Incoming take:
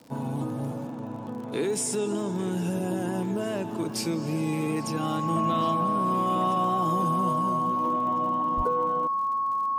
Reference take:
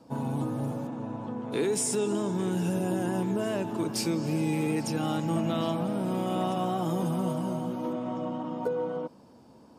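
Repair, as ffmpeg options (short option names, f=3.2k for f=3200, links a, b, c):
-filter_complex "[0:a]adeclick=t=4,bandreject=f=1.1k:w=30,asplit=3[a][b][c];[a]afade=t=out:st=8.56:d=0.02[d];[b]highpass=f=140:w=0.5412,highpass=f=140:w=1.3066,afade=t=in:st=8.56:d=0.02,afade=t=out:st=8.68:d=0.02[e];[c]afade=t=in:st=8.68:d=0.02[f];[d][e][f]amix=inputs=3:normalize=0"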